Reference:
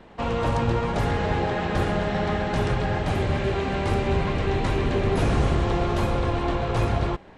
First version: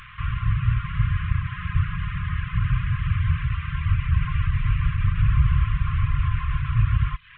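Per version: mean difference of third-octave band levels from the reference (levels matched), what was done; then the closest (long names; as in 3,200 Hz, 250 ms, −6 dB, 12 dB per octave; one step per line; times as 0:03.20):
17.5 dB: linear delta modulator 16 kbit/s, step −39 dBFS
reverb reduction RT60 0.6 s
dynamic equaliser 1,200 Hz, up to −4 dB, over −47 dBFS, Q 0.96
linear-phase brick-wall band-stop 160–1,000 Hz
level +6.5 dB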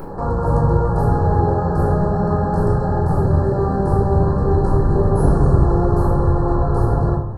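9.5 dB: brick-wall band-stop 1,800–4,000 Hz
flat-topped bell 3,500 Hz −13 dB 2.4 octaves
upward compression, threshold −25 dBFS
rectangular room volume 820 cubic metres, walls furnished, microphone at 4.2 metres
level −1 dB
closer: second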